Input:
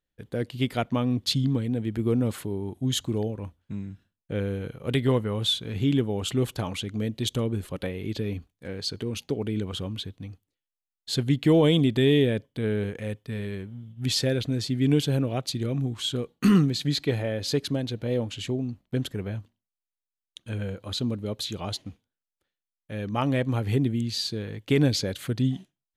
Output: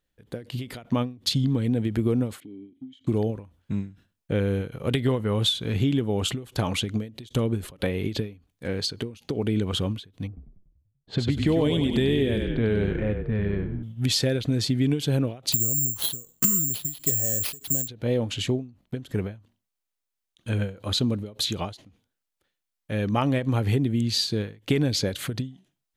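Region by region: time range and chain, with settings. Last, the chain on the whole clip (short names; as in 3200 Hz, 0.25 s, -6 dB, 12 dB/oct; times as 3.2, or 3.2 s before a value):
2.4–3.07 vowel filter i + compressor 2:1, threshold -48 dBFS
10.27–13.83 frequency-shifting echo 96 ms, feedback 54%, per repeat -34 Hz, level -7 dB + low-pass opened by the level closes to 500 Hz, open at -18.5 dBFS
15.52–17.88 low shelf 120 Hz +11.5 dB + notch 2300 Hz, Q 7.7 + careless resampling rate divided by 6×, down none, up zero stuff
whole clip: compressor 6:1, threshold -26 dBFS; ending taper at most 160 dB/s; gain +6.5 dB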